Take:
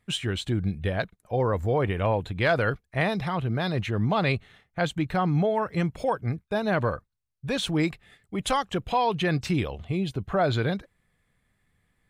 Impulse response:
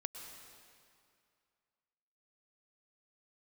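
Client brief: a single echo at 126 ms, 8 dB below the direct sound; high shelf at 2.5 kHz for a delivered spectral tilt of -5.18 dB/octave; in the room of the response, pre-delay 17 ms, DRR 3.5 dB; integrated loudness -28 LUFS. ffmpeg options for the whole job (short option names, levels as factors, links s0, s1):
-filter_complex "[0:a]highshelf=f=2500:g=7,aecho=1:1:126:0.398,asplit=2[s0][s1];[1:a]atrim=start_sample=2205,adelay=17[s2];[s1][s2]afir=irnorm=-1:irlink=0,volume=0.794[s3];[s0][s3]amix=inputs=2:normalize=0,volume=0.631"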